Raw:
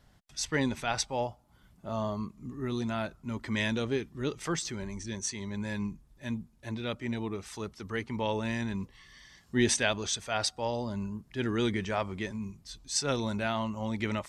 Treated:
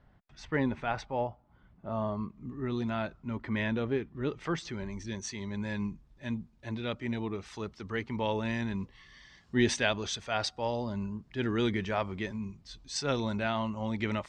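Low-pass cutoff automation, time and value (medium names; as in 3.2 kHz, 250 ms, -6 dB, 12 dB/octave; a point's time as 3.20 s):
1.86 s 2 kHz
3.06 s 3.9 kHz
3.51 s 2.2 kHz
4.10 s 2.2 kHz
5.09 s 4.7 kHz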